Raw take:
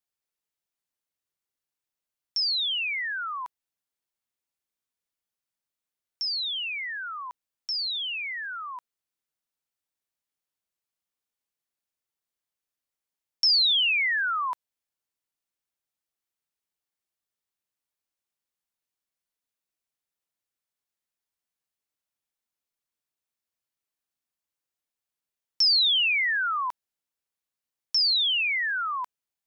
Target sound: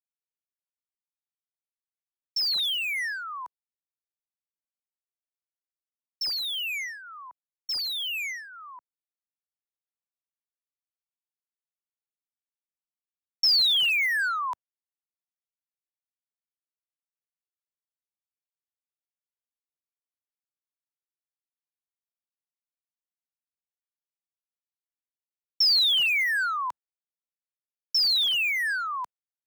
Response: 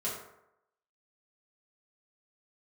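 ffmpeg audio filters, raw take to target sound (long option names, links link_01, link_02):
-filter_complex "[0:a]acrossover=split=120|490|1800[link_01][link_02][link_03][link_04];[link_04]acrusher=bits=5:mix=0:aa=0.5[link_05];[link_01][link_02][link_03][link_05]amix=inputs=4:normalize=0,agate=range=-33dB:threshold=-33dB:ratio=3:detection=peak"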